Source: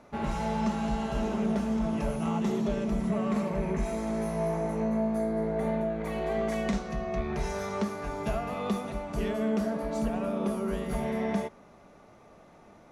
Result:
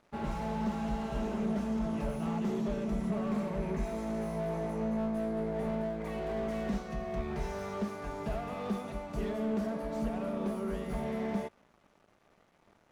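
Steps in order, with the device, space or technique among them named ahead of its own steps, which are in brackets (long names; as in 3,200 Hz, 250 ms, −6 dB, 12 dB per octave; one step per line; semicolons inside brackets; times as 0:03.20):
early transistor amplifier (dead-zone distortion −54.5 dBFS; slew-rate limiting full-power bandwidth 21 Hz)
level −3.5 dB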